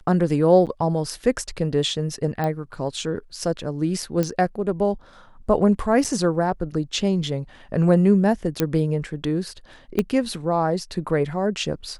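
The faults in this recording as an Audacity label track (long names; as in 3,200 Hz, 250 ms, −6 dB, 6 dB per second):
0.660000	0.670000	drop-out 7.9 ms
2.440000	2.440000	click −14 dBFS
4.230000	4.230000	click −11 dBFS
6.040000	6.050000	drop-out 6.6 ms
8.600000	8.600000	click −6 dBFS
9.990000	9.990000	click −9 dBFS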